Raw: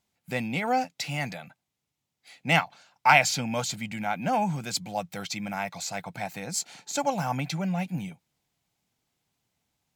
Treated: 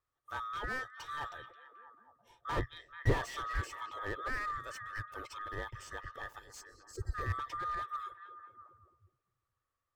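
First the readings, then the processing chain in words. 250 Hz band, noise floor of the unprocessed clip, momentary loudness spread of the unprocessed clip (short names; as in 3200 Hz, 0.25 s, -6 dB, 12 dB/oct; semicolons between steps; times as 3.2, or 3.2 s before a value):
-17.0 dB, -83 dBFS, 12 LU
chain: band-swap scrambler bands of 1000 Hz; EQ curve 120 Hz 0 dB, 170 Hz -17 dB, 450 Hz -10 dB, 1400 Hz -15 dB, 3400 Hz -24 dB; spectral gain 6.39–7.15, 520–3900 Hz -26 dB; delay with a stepping band-pass 0.217 s, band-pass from 3100 Hz, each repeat -0.7 oct, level -9 dB; slew limiter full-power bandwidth 14 Hz; gain +5.5 dB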